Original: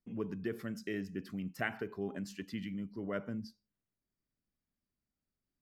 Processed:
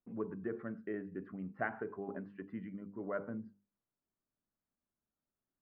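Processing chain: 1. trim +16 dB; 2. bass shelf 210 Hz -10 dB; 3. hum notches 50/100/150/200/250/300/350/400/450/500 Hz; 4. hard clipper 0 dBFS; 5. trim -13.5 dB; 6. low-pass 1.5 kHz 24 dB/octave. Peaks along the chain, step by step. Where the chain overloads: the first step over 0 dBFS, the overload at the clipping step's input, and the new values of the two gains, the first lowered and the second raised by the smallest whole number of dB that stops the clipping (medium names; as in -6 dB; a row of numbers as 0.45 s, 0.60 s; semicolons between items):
-2.5 dBFS, -3.0 dBFS, -3.0 dBFS, -3.0 dBFS, -16.5 dBFS, -21.0 dBFS; nothing clips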